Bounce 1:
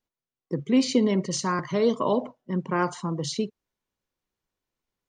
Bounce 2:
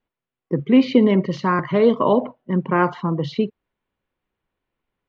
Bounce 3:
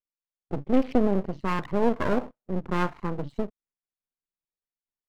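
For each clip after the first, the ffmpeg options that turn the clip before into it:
ffmpeg -i in.wav -af "lowpass=frequency=3100:width=0.5412,lowpass=frequency=3100:width=1.3066,volume=7dB" out.wav
ffmpeg -i in.wav -af "afwtdn=0.0355,aeval=exprs='max(val(0),0)':channel_layout=same,volume=-4.5dB" out.wav

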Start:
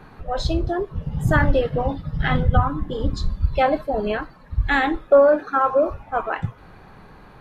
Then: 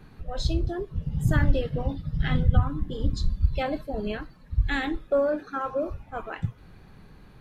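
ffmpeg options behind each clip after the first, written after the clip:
ffmpeg -i in.wav -af "equalizer=frequency=920:width_type=o:width=2.5:gain=-11.5,volume=-1.5dB" out.wav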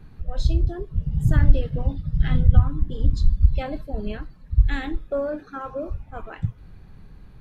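ffmpeg -i in.wav -af "lowshelf=frequency=140:gain=12,volume=-3.5dB" out.wav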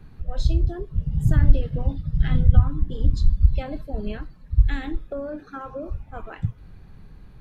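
ffmpeg -i in.wav -filter_complex "[0:a]acrossover=split=310[link_01][link_02];[link_02]acompressor=threshold=-32dB:ratio=4[link_03];[link_01][link_03]amix=inputs=2:normalize=0" out.wav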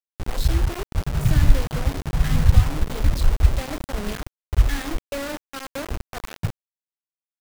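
ffmpeg -i in.wav -af "acrusher=bits=4:mix=0:aa=0.000001" out.wav

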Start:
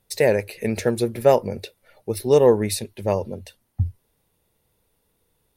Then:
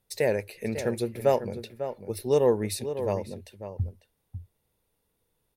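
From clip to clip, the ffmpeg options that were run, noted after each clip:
ffmpeg -i in.wav -filter_complex "[0:a]asplit=2[link_01][link_02];[link_02]adelay=548.1,volume=-10dB,highshelf=frequency=4000:gain=-12.3[link_03];[link_01][link_03]amix=inputs=2:normalize=0,volume=-7dB" out.wav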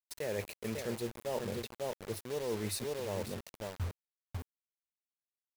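ffmpeg -i in.wav -af "areverse,acompressor=threshold=-31dB:ratio=16,areverse,acrusher=bits=6:mix=0:aa=0.000001,volume=-2dB" out.wav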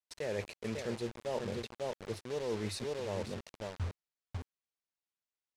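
ffmpeg -i in.wav -af "lowpass=6700" out.wav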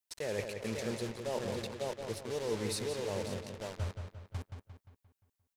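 ffmpeg -i in.wav -filter_complex "[0:a]highshelf=frequency=7200:gain=10,asplit=2[link_01][link_02];[link_02]adelay=175,lowpass=frequency=4900:poles=1,volume=-6.5dB,asplit=2[link_03][link_04];[link_04]adelay=175,lowpass=frequency=4900:poles=1,volume=0.48,asplit=2[link_05][link_06];[link_06]adelay=175,lowpass=frequency=4900:poles=1,volume=0.48,asplit=2[link_07][link_08];[link_08]adelay=175,lowpass=frequency=4900:poles=1,volume=0.48,asplit=2[link_09][link_10];[link_10]adelay=175,lowpass=frequency=4900:poles=1,volume=0.48,asplit=2[link_11][link_12];[link_12]adelay=175,lowpass=frequency=4900:poles=1,volume=0.48[link_13];[link_03][link_05][link_07][link_09][link_11][link_13]amix=inputs=6:normalize=0[link_14];[link_01][link_14]amix=inputs=2:normalize=0" out.wav

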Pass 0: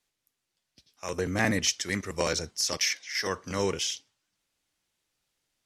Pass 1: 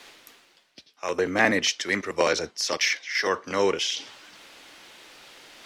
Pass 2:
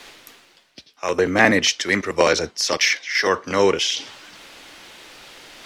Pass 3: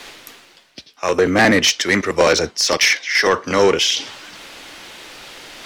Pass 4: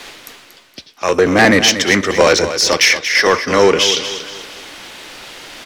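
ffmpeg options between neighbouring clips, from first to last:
ffmpeg -i in.wav -filter_complex "[0:a]acrossover=split=250 4500:gain=0.141 1 0.224[link_01][link_02][link_03];[link_01][link_02][link_03]amix=inputs=3:normalize=0,areverse,acompressor=mode=upward:threshold=-33dB:ratio=2.5,areverse,volume=7dB" out.wav
ffmpeg -i in.wav -af "lowshelf=frequency=120:gain=7,volume=5.5dB" out.wav
ffmpeg -i in.wav -af "asoftclip=type=tanh:threshold=-11.5dB,volume=5.5dB" out.wav
ffmpeg -i in.wav -af "aecho=1:1:234|468|702|936:0.282|0.107|0.0407|0.0155,volume=3dB" out.wav

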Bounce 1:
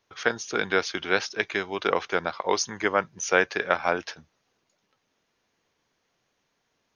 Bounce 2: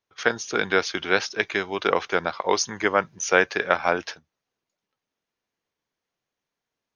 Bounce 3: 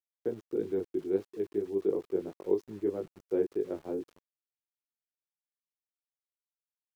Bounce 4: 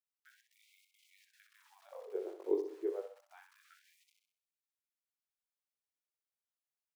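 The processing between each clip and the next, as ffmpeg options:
ffmpeg -i in.wav -af "agate=range=-14dB:threshold=-41dB:ratio=16:detection=peak,volume=2.5dB" out.wav
ffmpeg -i in.wav -af "flanger=delay=18.5:depth=2.3:speed=3,firequalizer=gain_entry='entry(210,0);entry(360,10);entry(600,-12);entry(1400,-29)':delay=0.05:min_phase=1,aeval=exprs='val(0)*gte(abs(val(0)),0.00447)':channel_layout=same,volume=-5.5dB" out.wav
ffmpeg -i in.wav -af "aecho=1:1:64|128|192|256|320|384:0.447|0.21|0.0987|0.0464|0.0218|0.0102,afftfilt=real='re*gte(b*sr/1024,290*pow(2100/290,0.5+0.5*sin(2*PI*0.29*pts/sr)))':imag='im*gte(b*sr/1024,290*pow(2100/290,0.5+0.5*sin(2*PI*0.29*pts/sr)))':win_size=1024:overlap=0.75,volume=-4.5dB" out.wav

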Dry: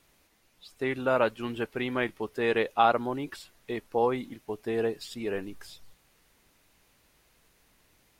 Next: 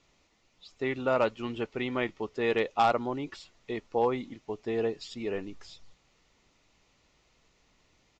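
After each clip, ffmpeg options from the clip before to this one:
ffmpeg -i in.wav -af "bandreject=frequency=1600:width=6.7,aresample=16000,volume=15.5dB,asoftclip=hard,volume=-15.5dB,aresample=44100,volume=-1dB" out.wav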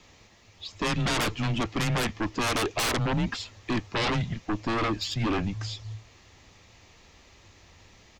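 ffmpeg -i in.wav -af "aeval=exprs='0.168*sin(PI/2*6.31*val(0)/0.168)':channel_layout=same,afreqshift=-110,volume=-7.5dB" out.wav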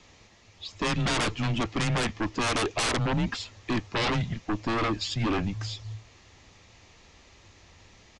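ffmpeg -i in.wav -af "aresample=22050,aresample=44100" out.wav

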